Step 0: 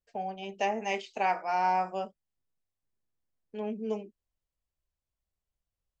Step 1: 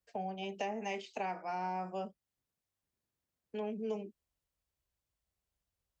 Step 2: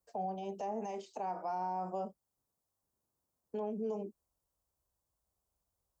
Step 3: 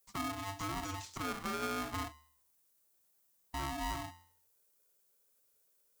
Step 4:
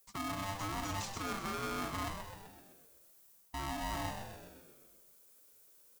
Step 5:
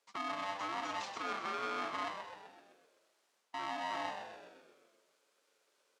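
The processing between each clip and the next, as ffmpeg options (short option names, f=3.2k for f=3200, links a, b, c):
-filter_complex "[0:a]highpass=48,acrossover=split=390[a][b];[a]alimiter=level_in=16dB:limit=-24dB:level=0:latency=1,volume=-16dB[c];[c][b]amix=inputs=2:normalize=0,acrossover=split=330[d][e];[e]acompressor=threshold=-41dB:ratio=4[f];[d][f]amix=inputs=2:normalize=0,volume=2dB"
-af "bass=f=250:g=-2,treble=f=4k:g=14,alimiter=level_in=10dB:limit=-24dB:level=0:latency=1:release=84,volume=-10dB,highshelf=f=1.5k:t=q:w=1.5:g=-13,volume=3.5dB"
-af "crystalizer=i=3.5:c=0,bandreject=f=80.48:t=h:w=4,bandreject=f=160.96:t=h:w=4,bandreject=f=241.44:t=h:w=4,bandreject=f=321.92:t=h:w=4,bandreject=f=402.4:t=h:w=4,bandreject=f=482.88:t=h:w=4,bandreject=f=563.36:t=h:w=4,bandreject=f=643.84:t=h:w=4,bandreject=f=724.32:t=h:w=4,bandreject=f=804.8:t=h:w=4,bandreject=f=885.28:t=h:w=4,bandreject=f=965.76:t=h:w=4,bandreject=f=1.04624k:t=h:w=4,aeval=exprs='val(0)*sgn(sin(2*PI*490*n/s))':c=same,volume=-1dB"
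-filter_complex "[0:a]areverse,acompressor=threshold=-46dB:ratio=6,areverse,asplit=9[a][b][c][d][e][f][g][h][i];[b]adelay=128,afreqshift=-90,volume=-7.5dB[j];[c]adelay=256,afreqshift=-180,volume=-12.1dB[k];[d]adelay=384,afreqshift=-270,volume=-16.7dB[l];[e]adelay=512,afreqshift=-360,volume=-21.2dB[m];[f]adelay=640,afreqshift=-450,volume=-25.8dB[n];[g]adelay=768,afreqshift=-540,volume=-30.4dB[o];[h]adelay=896,afreqshift=-630,volume=-35dB[p];[i]adelay=1024,afreqshift=-720,volume=-39.6dB[q];[a][j][k][l][m][n][o][p][q]amix=inputs=9:normalize=0,volume=9dB"
-af "highpass=420,lowpass=3.8k,volume=2dB"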